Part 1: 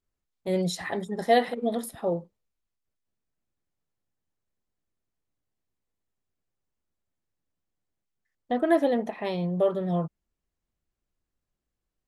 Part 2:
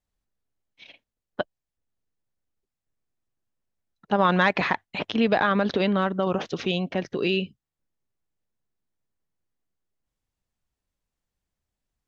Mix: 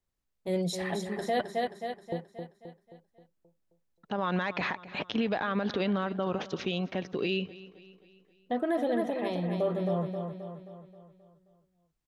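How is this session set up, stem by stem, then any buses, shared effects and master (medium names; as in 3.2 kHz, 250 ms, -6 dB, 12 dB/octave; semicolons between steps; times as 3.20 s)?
-3.5 dB, 0.00 s, muted 1.41–2.12 s, no send, echo send -6.5 dB, none
-4.5 dB, 0.00 s, no send, echo send -20 dB, none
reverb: none
echo: feedback delay 265 ms, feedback 50%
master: peak limiter -20 dBFS, peak gain reduction 8.5 dB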